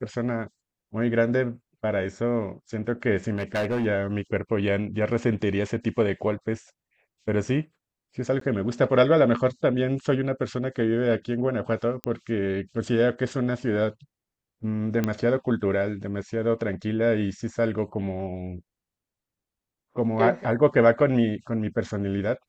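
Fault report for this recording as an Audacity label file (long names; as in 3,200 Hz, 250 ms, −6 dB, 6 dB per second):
3.350000	3.860000	clipping −22 dBFS
8.400000	8.410000	drop-out
12.040000	12.040000	click −14 dBFS
15.040000	15.040000	click −12 dBFS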